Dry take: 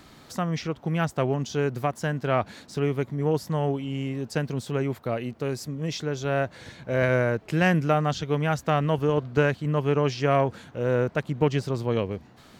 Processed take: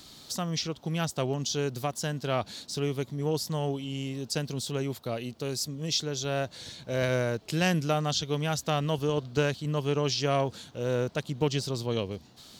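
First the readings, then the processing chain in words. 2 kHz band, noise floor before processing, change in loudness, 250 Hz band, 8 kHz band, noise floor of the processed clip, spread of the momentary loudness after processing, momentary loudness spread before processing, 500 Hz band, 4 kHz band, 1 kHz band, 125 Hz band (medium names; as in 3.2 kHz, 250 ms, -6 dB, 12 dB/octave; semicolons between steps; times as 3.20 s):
-5.5 dB, -52 dBFS, -4.0 dB, -4.5 dB, +7.5 dB, -54 dBFS, 7 LU, 8 LU, -5.0 dB, +5.5 dB, -5.5 dB, -4.5 dB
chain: resonant high shelf 2.8 kHz +10.5 dB, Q 1.5; trim -4.5 dB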